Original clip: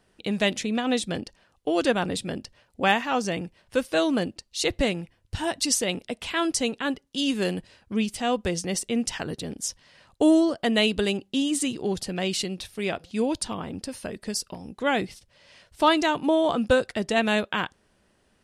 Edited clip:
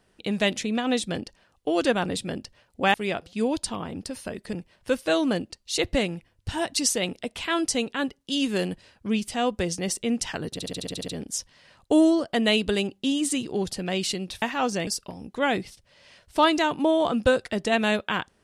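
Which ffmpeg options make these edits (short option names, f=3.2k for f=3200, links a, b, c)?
-filter_complex "[0:a]asplit=13[a][b][c][d][e][f][g][h][i][j][k][l][m];[a]atrim=end=2.942[n];[b]atrim=start=12.718:end=14.312[o];[c]atrim=start=3.388:end=9.452[p];[d]atrim=start=9.378:end=9.452[q];[e]atrim=start=9.378:end=9.452[r];[f]atrim=start=9.378:end=9.452[s];[g]atrim=start=9.378:end=9.452[t];[h]atrim=start=9.378:end=9.452[u];[i]atrim=start=9.378:end=9.452[v];[j]atrim=start=9.378:end=9.452[w];[k]atrim=start=9.378:end=12.722[x];[l]atrim=start=2.938:end=3.392[y];[m]atrim=start=14.308[z];[n][o]acrossfade=d=0.004:c1=hsin:c2=hsin[aa];[aa][p]acrossfade=d=0.004:c1=hsin:c2=hsin[ab];[ab][q]acrossfade=d=0.004:c1=hsin:c2=hsin[ac];[ac][r]acrossfade=d=0.004:c1=hsin:c2=hsin[ad];[ad][s]acrossfade=d=0.004:c1=hsin:c2=hsin[ae];[ae][t]acrossfade=d=0.004:c1=hsin:c2=hsin[af];[af][u]acrossfade=d=0.004:c1=hsin:c2=hsin[ag];[ag][v]acrossfade=d=0.004:c1=hsin:c2=hsin[ah];[ah][w]acrossfade=d=0.004:c1=hsin:c2=hsin[ai];[ai][x]acrossfade=d=0.004:c1=hsin:c2=hsin[aj];[aj][y]acrossfade=d=0.004:c1=hsin:c2=hsin[ak];[ak][z]acrossfade=d=0.004:c1=hsin:c2=hsin"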